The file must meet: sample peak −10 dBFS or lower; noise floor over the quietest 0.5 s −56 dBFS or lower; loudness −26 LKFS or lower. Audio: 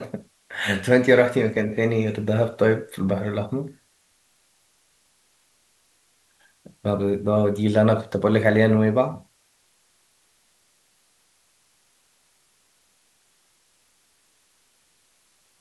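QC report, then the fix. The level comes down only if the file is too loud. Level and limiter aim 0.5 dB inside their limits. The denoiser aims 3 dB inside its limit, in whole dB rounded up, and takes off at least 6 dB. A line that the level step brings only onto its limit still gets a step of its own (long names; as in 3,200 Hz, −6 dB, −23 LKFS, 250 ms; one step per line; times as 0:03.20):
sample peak −3.5 dBFS: out of spec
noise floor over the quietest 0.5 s −64 dBFS: in spec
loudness −21.5 LKFS: out of spec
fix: level −5 dB
brickwall limiter −10.5 dBFS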